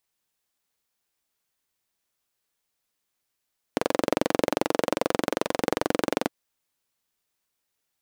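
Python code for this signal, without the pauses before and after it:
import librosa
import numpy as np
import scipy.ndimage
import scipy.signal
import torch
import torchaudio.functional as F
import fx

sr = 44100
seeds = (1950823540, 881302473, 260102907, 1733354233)

y = fx.engine_single(sr, seeds[0], length_s=2.52, rpm=2700, resonances_hz=(310.0, 480.0))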